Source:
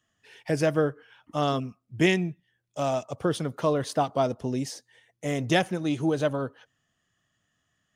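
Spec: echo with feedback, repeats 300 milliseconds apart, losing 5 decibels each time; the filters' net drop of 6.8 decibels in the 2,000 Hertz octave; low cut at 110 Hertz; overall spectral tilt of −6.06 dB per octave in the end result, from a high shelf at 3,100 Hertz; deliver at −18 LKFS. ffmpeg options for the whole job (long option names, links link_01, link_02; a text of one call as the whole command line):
ffmpeg -i in.wav -af "highpass=110,equalizer=frequency=2000:width_type=o:gain=-7.5,highshelf=frequency=3100:gain=-3,aecho=1:1:300|600|900|1200|1500|1800|2100:0.562|0.315|0.176|0.0988|0.0553|0.031|0.0173,volume=9.5dB" out.wav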